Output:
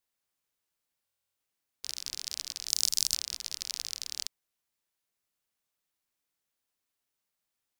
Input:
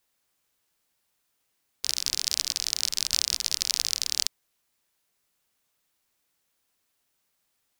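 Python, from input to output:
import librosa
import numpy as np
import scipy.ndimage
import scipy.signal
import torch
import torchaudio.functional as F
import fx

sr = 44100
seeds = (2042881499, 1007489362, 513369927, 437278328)

y = fx.bass_treble(x, sr, bass_db=5, treble_db=13, at=(2.68, 3.13), fade=0.02)
y = fx.buffer_glitch(y, sr, at_s=(1.04,), block=1024, repeats=13)
y = F.gain(torch.from_numpy(y), -10.0).numpy()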